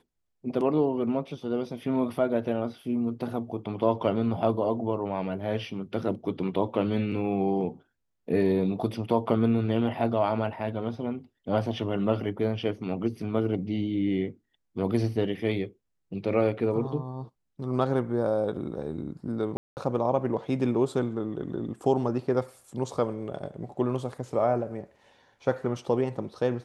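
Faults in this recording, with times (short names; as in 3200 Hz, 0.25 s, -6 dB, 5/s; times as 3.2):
19.57–19.77 gap 0.199 s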